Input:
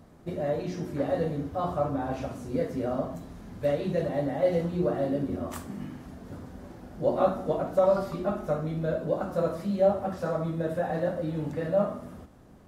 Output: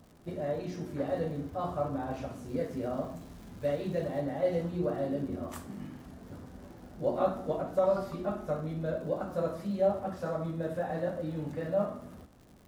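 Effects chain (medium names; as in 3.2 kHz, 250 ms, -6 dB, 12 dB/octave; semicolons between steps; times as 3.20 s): crackle 160 per s -44 dBFS, from 2.45 s 600 per s, from 4.20 s 120 per s; trim -4.5 dB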